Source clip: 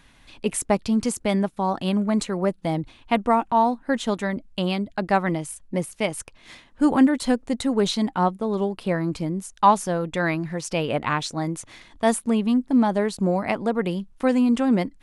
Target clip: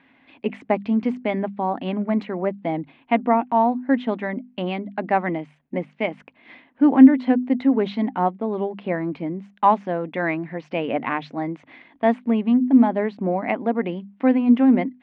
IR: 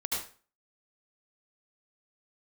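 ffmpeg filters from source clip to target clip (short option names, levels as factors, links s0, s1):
-af "highpass=190,equalizer=f=260:t=q:w=4:g=10,equalizer=f=720:t=q:w=4:g=4,equalizer=f=1300:t=q:w=4:g=-4,equalizer=f=2100:t=q:w=4:g=4,lowpass=f=2800:w=0.5412,lowpass=f=2800:w=1.3066,bandreject=f=50:t=h:w=6,bandreject=f=100:t=h:w=6,bandreject=f=150:t=h:w=6,bandreject=f=200:t=h:w=6,bandreject=f=250:t=h:w=6,volume=0.891"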